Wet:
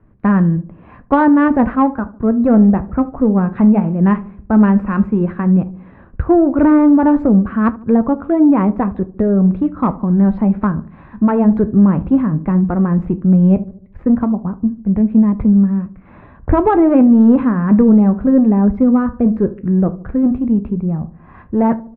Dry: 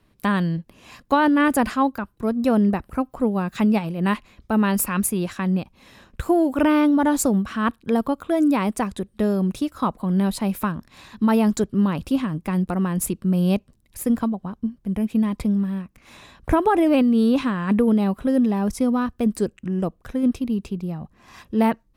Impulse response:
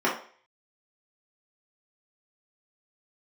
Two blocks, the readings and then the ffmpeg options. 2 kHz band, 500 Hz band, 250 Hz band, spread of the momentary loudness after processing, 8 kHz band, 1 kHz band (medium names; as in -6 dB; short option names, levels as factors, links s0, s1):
+0.5 dB, +5.5 dB, +8.5 dB, 9 LU, under -40 dB, +4.5 dB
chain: -filter_complex "[0:a]lowpass=f=1700:w=0.5412,lowpass=f=1700:w=1.3066,lowshelf=f=320:g=7.5,acontrast=29,flanger=delay=8.7:depth=7.4:regen=-68:speed=0.13:shape=triangular,asplit=2[s0][s1];[s1]adelay=75,lowpass=f=830:p=1,volume=0.158,asplit=2[s2][s3];[s3]adelay=75,lowpass=f=830:p=1,volume=0.54,asplit=2[s4][s5];[s5]adelay=75,lowpass=f=830:p=1,volume=0.54,asplit=2[s6][s7];[s7]adelay=75,lowpass=f=830:p=1,volume=0.54,asplit=2[s8][s9];[s9]adelay=75,lowpass=f=830:p=1,volume=0.54[s10];[s2][s4][s6][s8][s10]amix=inputs=5:normalize=0[s11];[s0][s11]amix=inputs=2:normalize=0,volume=1.5"